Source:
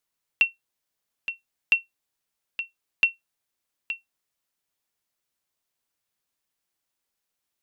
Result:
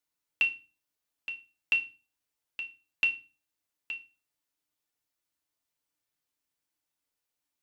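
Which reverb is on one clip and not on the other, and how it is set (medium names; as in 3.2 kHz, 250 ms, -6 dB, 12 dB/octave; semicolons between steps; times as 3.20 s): FDN reverb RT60 0.31 s, low-frequency decay 1.5×, high-frequency decay 1×, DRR 2.5 dB; trim -6 dB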